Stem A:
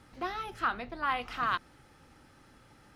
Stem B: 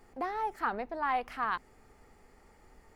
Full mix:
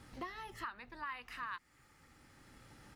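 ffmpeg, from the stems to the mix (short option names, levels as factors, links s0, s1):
-filter_complex "[0:a]equalizer=f=980:w=0.35:g=-4,volume=1.26[s0];[1:a]highpass=f=1200:w=0.5412,highpass=f=1200:w=1.3066,adelay=4.3,volume=0.944,asplit=2[s1][s2];[s2]apad=whole_len=130531[s3];[s0][s3]sidechaincompress=threshold=0.00562:ratio=8:attack=42:release=1210[s4];[s4][s1]amix=inputs=2:normalize=0,acompressor=threshold=0.00562:ratio=2"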